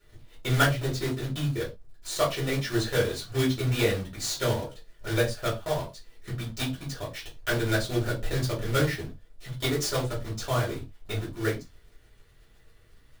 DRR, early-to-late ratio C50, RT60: -5.5 dB, 10.5 dB, not exponential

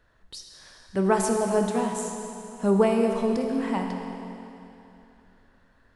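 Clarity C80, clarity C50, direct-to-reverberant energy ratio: 4.0 dB, 3.5 dB, 2.5 dB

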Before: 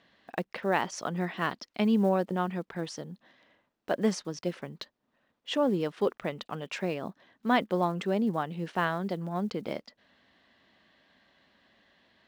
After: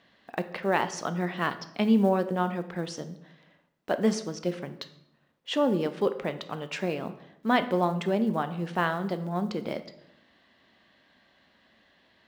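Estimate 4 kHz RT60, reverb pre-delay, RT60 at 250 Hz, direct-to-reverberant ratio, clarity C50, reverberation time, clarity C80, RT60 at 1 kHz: 0.60 s, 11 ms, 1.1 s, 9.5 dB, 13.0 dB, 0.80 s, 15.5 dB, 0.75 s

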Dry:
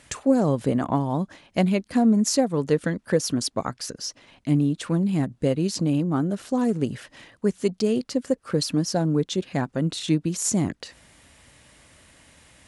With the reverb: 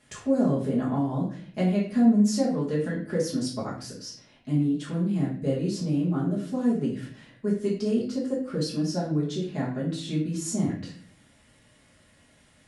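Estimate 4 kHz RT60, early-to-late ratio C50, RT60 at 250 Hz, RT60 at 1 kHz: 0.40 s, 4.5 dB, 0.75 s, 0.45 s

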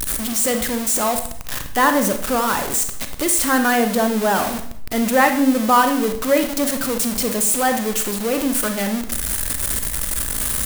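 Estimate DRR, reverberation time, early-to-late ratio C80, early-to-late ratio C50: 6.5 dB, 0.60 s, 12.5 dB, 8.5 dB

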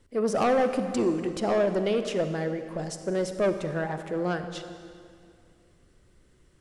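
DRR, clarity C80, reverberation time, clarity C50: 8.5 dB, 9.5 dB, 2.3 s, 8.5 dB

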